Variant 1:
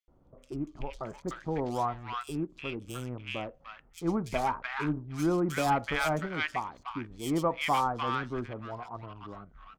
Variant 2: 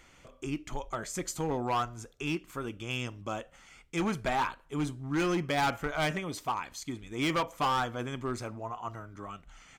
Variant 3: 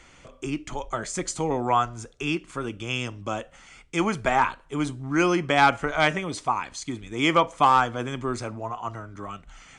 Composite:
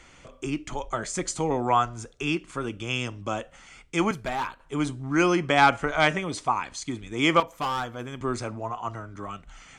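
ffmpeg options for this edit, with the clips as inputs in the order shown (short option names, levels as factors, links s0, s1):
-filter_complex "[1:a]asplit=2[s0][s1];[2:a]asplit=3[s2][s3][s4];[s2]atrim=end=4.112[s5];[s0]atrim=start=4.108:end=4.602[s6];[s3]atrim=start=4.598:end=7.402[s7];[s1]atrim=start=7.398:end=8.212[s8];[s4]atrim=start=8.208[s9];[s5][s6]acrossfade=d=0.004:c1=hsin:c2=hsin[s10];[s10][s7]acrossfade=d=0.004:c1=hsin:c2=hsin[s11];[s11][s8]acrossfade=d=0.004:c1=hsin:c2=hsin[s12];[s12][s9]acrossfade=d=0.004:c1=hsin:c2=hsin"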